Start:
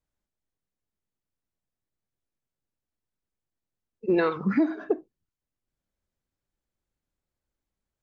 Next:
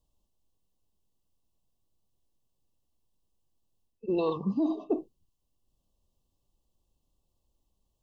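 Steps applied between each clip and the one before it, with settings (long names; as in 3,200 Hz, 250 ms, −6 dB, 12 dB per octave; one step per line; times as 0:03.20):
brick-wall band-stop 1,200–2,600 Hz
low-shelf EQ 62 Hz +8 dB
reversed playback
downward compressor 5 to 1, threshold −33 dBFS, peak gain reduction 14 dB
reversed playback
level +6.5 dB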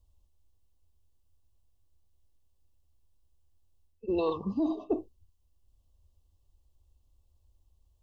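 low shelf with overshoot 110 Hz +9 dB, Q 3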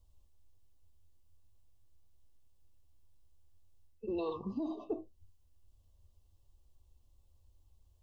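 flanger 0.44 Hz, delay 7.8 ms, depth 3.6 ms, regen +64%
downward compressor 2 to 1, threshold −46 dBFS, peak gain reduction 10 dB
level +5.5 dB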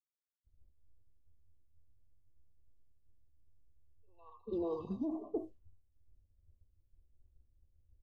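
three-band delay without the direct sound mids, highs, lows 210/440 ms, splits 1,100/4,200 Hz
downward expander −59 dBFS
low-pass that shuts in the quiet parts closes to 370 Hz, open at −34.5 dBFS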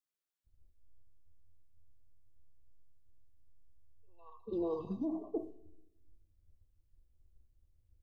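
rectangular room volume 3,100 cubic metres, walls furnished, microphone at 0.6 metres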